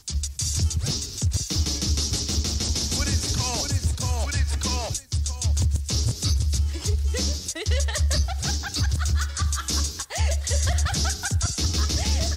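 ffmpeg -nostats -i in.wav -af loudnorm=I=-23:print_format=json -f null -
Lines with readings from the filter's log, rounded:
"input_i" : "-24.6",
"input_tp" : "-11.8",
"input_lra" : "0.8",
"input_thresh" : "-34.6",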